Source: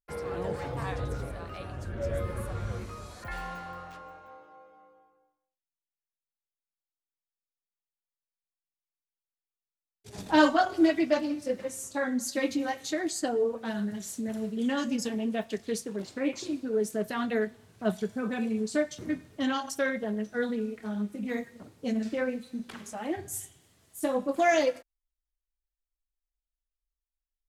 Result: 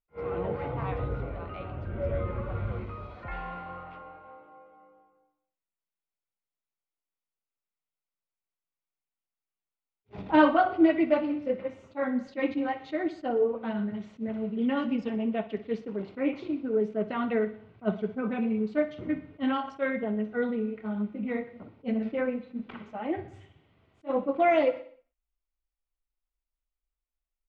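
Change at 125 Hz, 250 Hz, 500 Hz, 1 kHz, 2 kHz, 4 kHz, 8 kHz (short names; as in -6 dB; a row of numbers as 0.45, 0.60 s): +1.5 dB, +1.0 dB, +1.5 dB, +1.5 dB, -2.0 dB, -7.0 dB, under -30 dB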